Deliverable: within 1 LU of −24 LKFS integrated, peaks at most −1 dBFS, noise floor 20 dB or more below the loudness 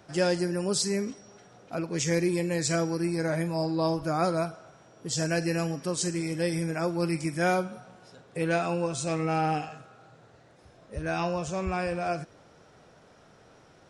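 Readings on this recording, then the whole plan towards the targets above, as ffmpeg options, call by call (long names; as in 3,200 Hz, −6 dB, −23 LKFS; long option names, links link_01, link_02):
integrated loudness −29.0 LKFS; sample peak −14.5 dBFS; target loudness −24.0 LKFS
→ -af "volume=5dB"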